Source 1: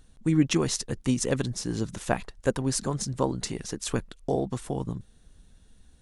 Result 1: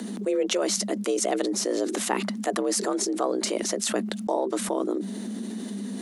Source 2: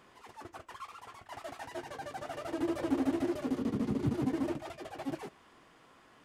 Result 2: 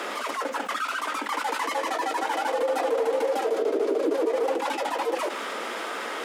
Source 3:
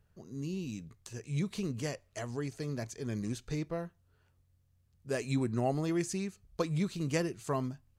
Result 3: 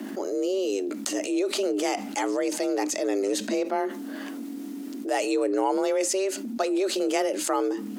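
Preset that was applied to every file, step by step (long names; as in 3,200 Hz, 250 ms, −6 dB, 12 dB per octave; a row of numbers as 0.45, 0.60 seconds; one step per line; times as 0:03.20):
frequency shifter +190 Hz
envelope flattener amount 70%
loudness normalisation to −27 LKFS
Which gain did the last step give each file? −5.5, +4.0, +4.5 decibels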